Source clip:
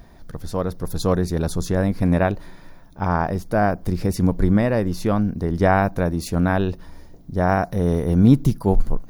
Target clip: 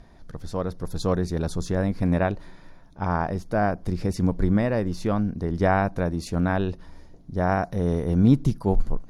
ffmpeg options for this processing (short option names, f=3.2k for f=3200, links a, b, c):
-af "lowpass=8.7k,volume=-4dB"